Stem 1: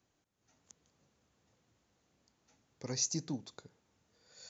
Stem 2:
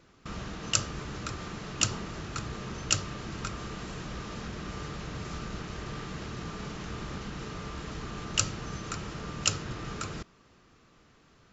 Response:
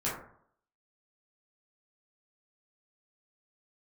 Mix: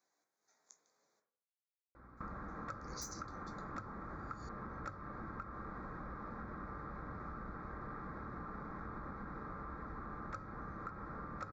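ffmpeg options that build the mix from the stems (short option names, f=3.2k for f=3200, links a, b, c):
-filter_complex "[0:a]highpass=520,aeval=exprs='(mod(15*val(0)+1,2)-1)/15':c=same,volume=-6dB,asplit=3[a][b][c];[a]atrim=end=1.2,asetpts=PTS-STARTPTS,afade=t=out:st=1.196:d=0.004:c=hsin[d];[b]atrim=start=1.2:end=2.17,asetpts=PTS-STARTPTS,volume=0[e];[c]atrim=start=2.17,asetpts=PTS-STARTPTS,afade=t=in:d=0.004:c=hsin[f];[d][e][f]concat=n=3:v=0:a=1,asplit=2[g][h];[h]volume=-5dB[i];[1:a]aecho=1:1:3.7:0.32,aeval=exprs='val(0)+0.00112*(sin(2*PI*60*n/s)+sin(2*PI*2*60*n/s)/2+sin(2*PI*3*60*n/s)/3+sin(2*PI*4*60*n/s)/4+sin(2*PI*5*60*n/s)/5)':c=same,lowpass=f=1.3k:t=q:w=2.3,adelay=1950,volume=-2dB[j];[2:a]atrim=start_sample=2205[k];[i][k]afir=irnorm=-1:irlink=0[l];[g][j][l]amix=inputs=3:normalize=0,asuperstop=centerf=2900:order=4:qfactor=2.1,acompressor=threshold=-43dB:ratio=6"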